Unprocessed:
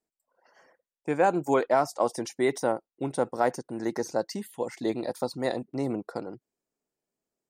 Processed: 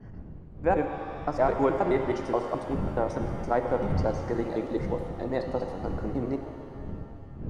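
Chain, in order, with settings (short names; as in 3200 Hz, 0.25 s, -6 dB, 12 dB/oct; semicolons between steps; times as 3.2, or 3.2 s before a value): slices in reverse order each 0.106 s, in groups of 6; wind noise 150 Hz -37 dBFS; tape spacing loss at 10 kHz 23 dB; shimmer reverb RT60 2.5 s, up +7 st, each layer -8 dB, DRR 5.5 dB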